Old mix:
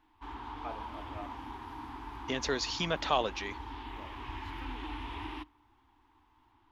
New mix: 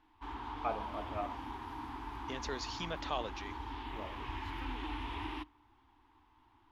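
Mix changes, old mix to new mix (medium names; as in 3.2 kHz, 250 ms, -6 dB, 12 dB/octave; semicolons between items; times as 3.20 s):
first voice +6.5 dB; second voice -8.5 dB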